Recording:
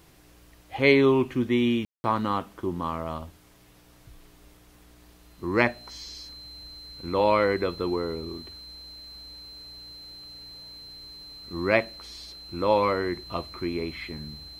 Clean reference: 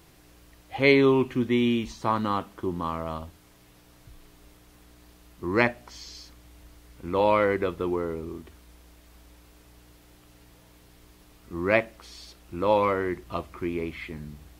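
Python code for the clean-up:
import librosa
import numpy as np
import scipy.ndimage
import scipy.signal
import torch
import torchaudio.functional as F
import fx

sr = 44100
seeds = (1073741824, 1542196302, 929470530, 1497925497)

y = fx.notch(x, sr, hz=4100.0, q=30.0)
y = fx.fix_ambience(y, sr, seeds[0], print_start_s=3.37, print_end_s=3.87, start_s=1.85, end_s=2.04)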